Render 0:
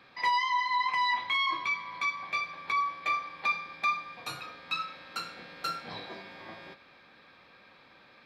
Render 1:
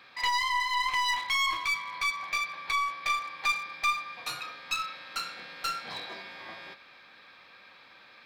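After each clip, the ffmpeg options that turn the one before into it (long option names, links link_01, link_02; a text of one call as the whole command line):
ffmpeg -i in.wav -af "aeval=exprs='clip(val(0),-1,0.0158)':channel_layout=same,tiltshelf=frequency=690:gain=-5.5" out.wav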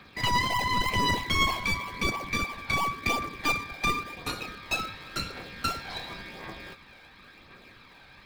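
ffmpeg -i in.wav -filter_complex "[0:a]asplit=2[link_01][link_02];[link_02]acrusher=samples=42:mix=1:aa=0.000001:lfo=1:lforange=42:lforate=3.1,volume=-5.5dB[link_03];[link_01][link_03]amix=inputs=2:normalize=0,aphaser=in_gain=1:out_gain=1:delay=1.4:decay=0.36:speed=0.93:type=triangular" out.wav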